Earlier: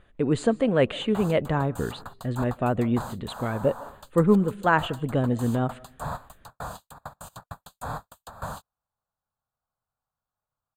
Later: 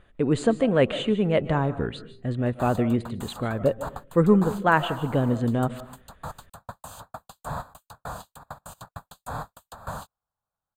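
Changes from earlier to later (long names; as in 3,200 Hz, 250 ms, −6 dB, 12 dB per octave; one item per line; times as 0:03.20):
speech: send +9.0 dB
background: entry +1.45 s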